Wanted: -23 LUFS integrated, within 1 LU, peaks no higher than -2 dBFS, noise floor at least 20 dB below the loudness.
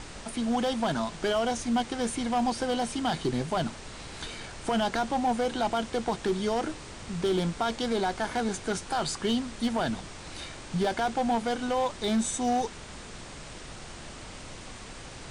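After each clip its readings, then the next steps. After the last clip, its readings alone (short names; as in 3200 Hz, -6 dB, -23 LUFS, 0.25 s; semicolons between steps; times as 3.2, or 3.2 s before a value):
clipped 1.0%; flat tops at -20.5 dBFS; noise floor -44 dBFS; noise floor target -50 dBFS; loudness -29.5 LUFS; peak -20.5 dBFS; loudness target -23.0 LUFS
-> clip repair -20.5 dBFS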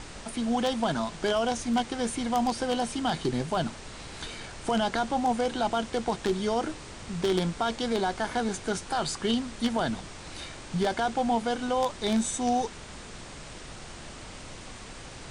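clipped 0.0%; noise floor -44 dBFS; noise floor target -49 dBFS
-> noise print and reduce 6 dB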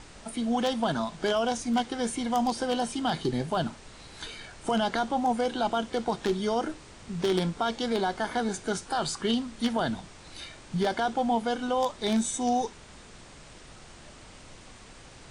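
noise floor -50 dBFS; loudness -29.0 LUFS; peak -11.5 dBFS; loudness target -23.0 LUFS
-> gain +6 dB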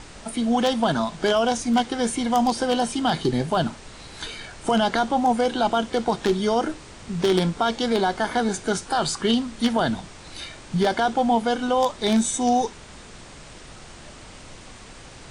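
loudness -23.0 LUFS; peak -5.5 dBFS; noise floor -43 dBFS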